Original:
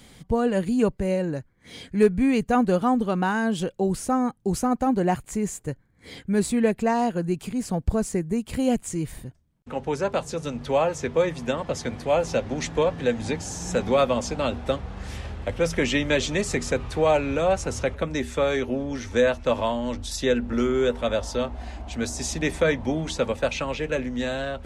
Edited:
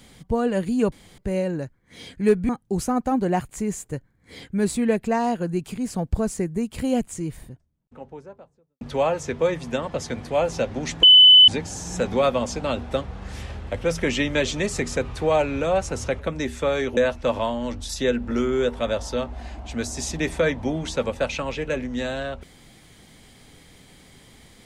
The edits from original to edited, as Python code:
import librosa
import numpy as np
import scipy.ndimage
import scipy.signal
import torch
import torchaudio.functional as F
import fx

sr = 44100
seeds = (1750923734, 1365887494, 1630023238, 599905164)

y = fx.studio_fade_out(x, sr, start_s=8.53, length_s=2.03)
y = fx.edit(y, sr, fx.insert_room_tone(at_s=0.92, length_s=0.26),
    fx.cut(start_s=2.23, length_s=2.01),
    fx.bleep(start_s=12.78, length_s=0.45, hz=3010.0, db=-7.0),
    fx.cut(start_s=18.72, length_s=0.47), tone=tone)